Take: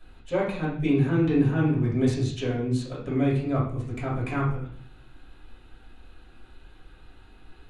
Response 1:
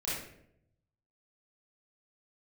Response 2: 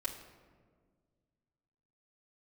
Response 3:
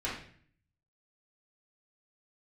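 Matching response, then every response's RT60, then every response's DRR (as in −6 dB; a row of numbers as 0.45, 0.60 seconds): 3; 0.70, 1.7, 0.55 seconds; −10.0, −6.5, −8.5 decibels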